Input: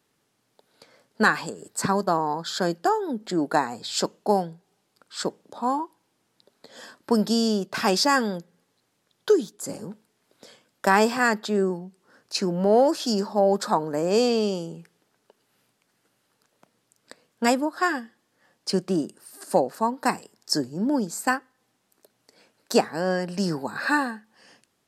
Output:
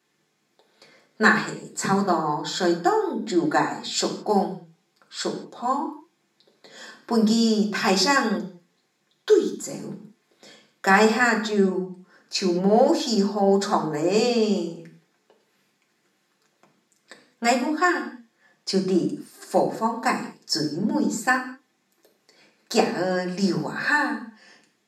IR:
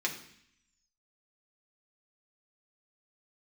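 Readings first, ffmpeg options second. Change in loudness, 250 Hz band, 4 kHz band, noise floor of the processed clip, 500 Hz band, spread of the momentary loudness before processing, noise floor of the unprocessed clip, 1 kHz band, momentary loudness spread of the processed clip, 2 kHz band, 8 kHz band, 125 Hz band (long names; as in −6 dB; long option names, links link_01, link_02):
+2.0 dB, +3.0 dB, +1.5 dB, −70 dBFS, +1.0 dB, 13 LU, −72 dBFS, +1.0 dB, 14 LU, +3.5 dB, +1.5 dB, +2.5 dB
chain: -filter_complex "[1:a]atrim=start_sample=2205,afade=type=out:start_time=0.27:duration=0.01,atrim=end_sample=12348[link_01];[0:a][link_01]afir=irnorm=-1:irlink=0,volume=-3dB"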